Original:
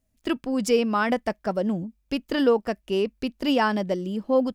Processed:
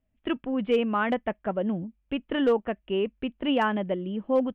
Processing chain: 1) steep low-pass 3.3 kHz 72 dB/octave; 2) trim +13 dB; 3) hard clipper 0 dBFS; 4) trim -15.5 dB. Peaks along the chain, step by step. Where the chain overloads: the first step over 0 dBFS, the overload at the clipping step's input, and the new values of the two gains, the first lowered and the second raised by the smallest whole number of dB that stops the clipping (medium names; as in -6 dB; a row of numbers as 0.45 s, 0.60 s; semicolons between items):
-9.0 dBFS, +4.0 dBFS, 0.0 dBFS, -15.5 dBFS; step 2, 4.0 dB; step 2 +9 dB, step 4 -11.5 dB